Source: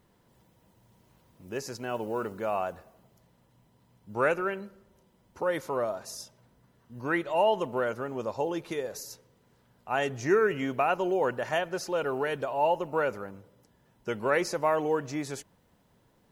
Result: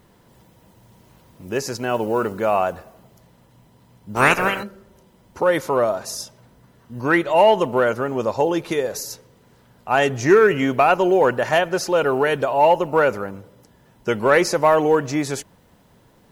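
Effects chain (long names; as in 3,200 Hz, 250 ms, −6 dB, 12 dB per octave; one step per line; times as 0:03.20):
0:04.15–0:04.62: ceiling on every frequency bin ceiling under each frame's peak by 25 dB
in parallel at −6 dB: hard clipping −21 dBFS, distortion −15 dB
on the sum: level +7.5 dB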